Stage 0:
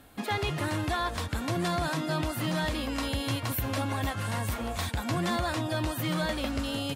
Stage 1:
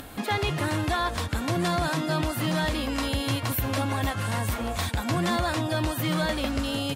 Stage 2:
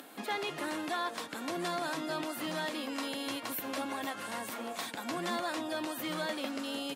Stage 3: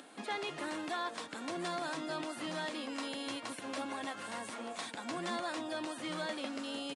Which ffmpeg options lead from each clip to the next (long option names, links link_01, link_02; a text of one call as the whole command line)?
ffmpeg -i in.wav -af "acompressor=mode=upward:threshold=-37dB:ratio=2.5,volume=3.5dB" out.wav
ffmpeg -i in.wav -af "highpass=frequency=230:width=0.5412,highpass=frequency=230:width=1.3066,volume=-7.5dB" out.wav
ffmpeg -i in.wav -af "aresample=22050,aresample=44100,volume=-3dB" out.wav